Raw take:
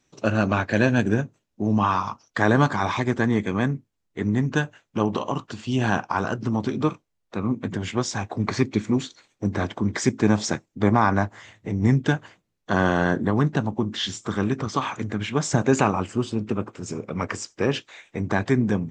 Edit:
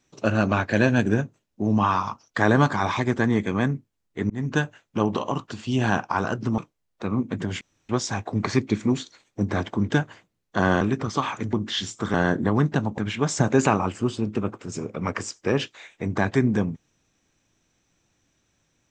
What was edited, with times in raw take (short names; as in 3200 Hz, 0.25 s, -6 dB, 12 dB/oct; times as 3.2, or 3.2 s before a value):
4.3–4.6 fade in equal-power
6.58–6.9 cut
7.93 insert room tone 0.28 s
9.93–12.03 cut
12.95–13.79 swap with 14.4–15.12